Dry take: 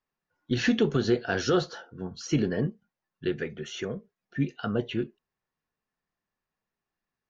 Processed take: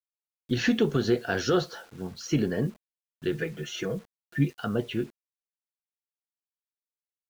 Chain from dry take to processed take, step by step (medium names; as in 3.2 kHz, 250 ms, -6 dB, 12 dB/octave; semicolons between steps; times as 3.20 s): 3.32–4.50 s: comb 6.2 ms, depth 82%; bit crusher 9-bit